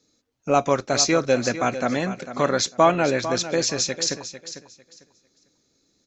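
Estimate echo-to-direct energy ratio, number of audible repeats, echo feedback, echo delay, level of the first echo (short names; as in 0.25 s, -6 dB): -12.0 dB, 2, 21%, 0.449 s, -12.0 dB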